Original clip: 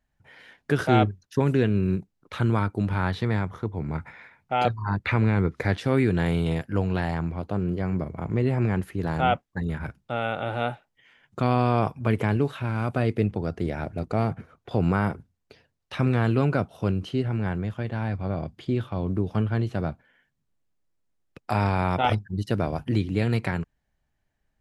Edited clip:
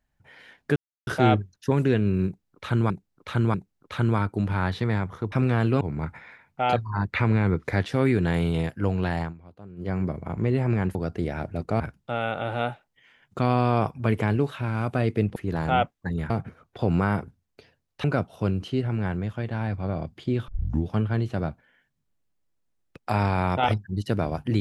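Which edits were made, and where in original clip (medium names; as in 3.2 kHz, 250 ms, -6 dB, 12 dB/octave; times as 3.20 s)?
0.76 s: insert silence 0.31 s
1.95–2.59 s: loop, 3 plays
7.14–7.81 s: dip -17 dB, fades 0.12 s
8.87–9.81 s: swap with 13.37–14.22 s
15.96–16.45 s: move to 3.73 s
18.89 s: tape start 0.39 s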